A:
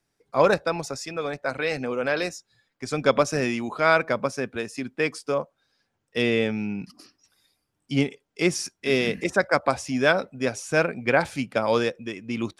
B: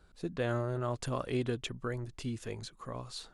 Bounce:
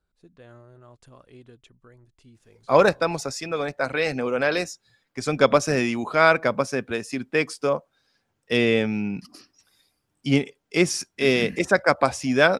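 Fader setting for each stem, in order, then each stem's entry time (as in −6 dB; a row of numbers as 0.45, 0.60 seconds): +2.5, −15.5 decibels; 2.35, 0.00 seconds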